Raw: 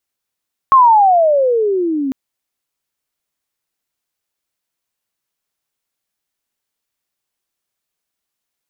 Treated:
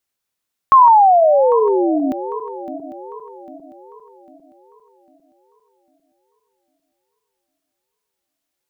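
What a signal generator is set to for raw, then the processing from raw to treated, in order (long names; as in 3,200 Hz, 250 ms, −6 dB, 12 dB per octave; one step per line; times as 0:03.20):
glide logarithmic 1,100 Hz → 260 Hz −4 dBFS → −16 dBFS 1.40 s
feedback delay that plays each chunk backwards 400 ms, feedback 62%, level −13 dB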